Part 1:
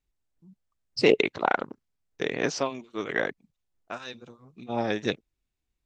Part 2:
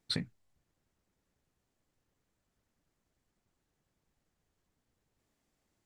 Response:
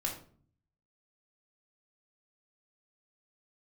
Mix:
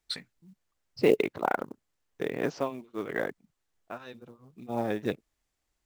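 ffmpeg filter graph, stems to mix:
-filter_complex "[0:a]lowpass=f=1.2k:p=1,volume=-1.5dB[a];[1:a]highpass=f=1k:p=1,volume=0.5dB[b];[a][b]amix=inputs=2:normalize=0,acrusher=bits=7:mode=log:mix=0:aa=0.000001"

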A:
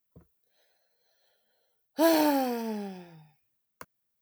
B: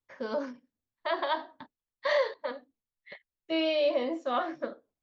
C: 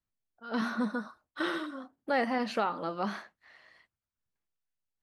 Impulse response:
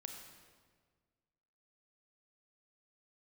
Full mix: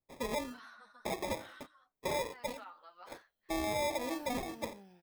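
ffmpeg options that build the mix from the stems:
-filter_complex "[0:a]acompressor=threshold=-26dB:ratio=6,adelay=1950,volume=-16dB[a];[1:a]acrusher=samples=30:mix=1:aa=0.000001,volume=-2dB[b];[2:a]highpass=1k,asplit=2[c][d];[d]adelay=9.6,afreqshift=-2.9[e];[c][e]amix=inputs=2:normalize=1,volume=-12.5dB[f];[a][b][f]amix=inputs=3:normalize=0,alimiter=level_in=3.5dB:limit=-24dB:level=0:latency=1:release=274,volume=-3.5dB"

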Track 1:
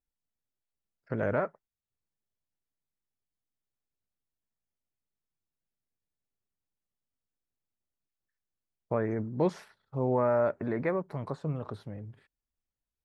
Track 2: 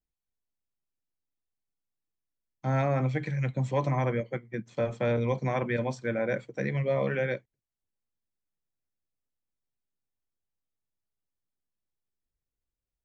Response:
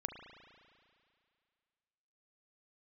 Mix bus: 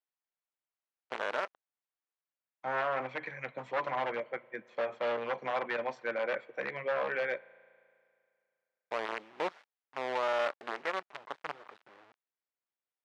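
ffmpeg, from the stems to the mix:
-filter_complex "[0:a]acrusher=bits=5:dc=4:mix=0:aa=0.000001,volume=-1.5dB[a];[1:a]aeval=exprs='0.0708*(abs(mod(val(0)/0.0708+3,4)-2)-1)':c=same,volume=1dB,asplit=2[b][c];[c]volume=-15dB[d];[2:a]atrim=start_sample=2205[e];[d][e]afir=irnorm=-1:irlink=0[f];[a][b][f]amix=inputs=3:normalize=0,highpass=650,lowpass=2.4k"

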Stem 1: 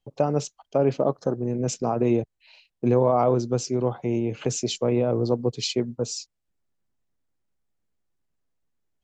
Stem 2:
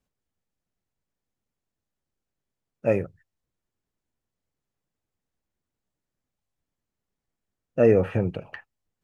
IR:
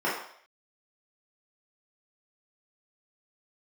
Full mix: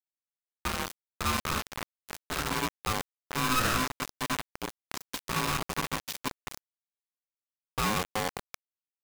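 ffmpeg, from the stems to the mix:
-filter_complex "[0:a]bandpass=f=1.8k:t=q:w=0.52:csg=0,adelay=450,volume=-5.5dB,asplit=2[a][b];[b]volume=-11dB[c];[1:a]alimiter=limit=-17dB:level=0:latency=1:release=181,volume=-4dB[d];[2:a]atrim=start_sample=2205[e];[c][e]afir=irnorm=-1:irlink=0[f];[a][d][f]amix=inputs=3:normalize=0,acrusher=bits=4:mix=0:aa=0.000001,aeval=exprs='val(0)*sgn(sin(2*PI*640*n/s))':c=same"

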